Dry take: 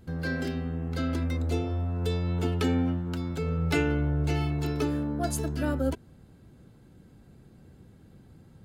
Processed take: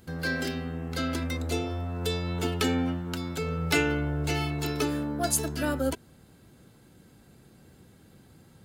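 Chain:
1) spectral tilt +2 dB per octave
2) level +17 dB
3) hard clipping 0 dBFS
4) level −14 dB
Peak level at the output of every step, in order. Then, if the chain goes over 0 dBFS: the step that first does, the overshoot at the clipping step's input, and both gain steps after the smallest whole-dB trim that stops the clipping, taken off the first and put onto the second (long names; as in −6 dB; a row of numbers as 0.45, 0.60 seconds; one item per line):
−13.5, +3.5, 0.0, −14.0 dBFS
step 2, 3.5 dB
step 2 +13 dB, step 4 −10 dB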